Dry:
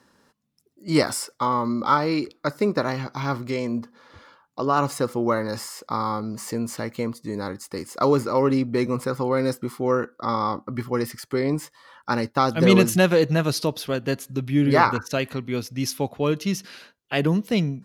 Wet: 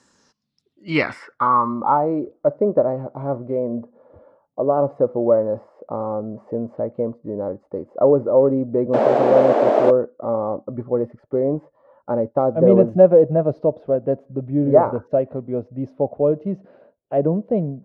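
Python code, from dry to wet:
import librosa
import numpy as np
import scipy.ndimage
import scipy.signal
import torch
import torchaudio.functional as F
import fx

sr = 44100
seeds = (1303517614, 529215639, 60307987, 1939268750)

y = fx.spec_paint(x, sr, seeds[0], shape='noise', start_s=8.93, length_s=0.98, low_hz=200.0, high_hz=8500.0, level_db=-11.0)
y = fx.filter_sweep_lowpass(y, sr, from_hz=7400.0, to_hz=600.0, start_s=0.09, end_s=2.17, q=4.6)
y = y * librosa.db_to_amplitude(-1.5)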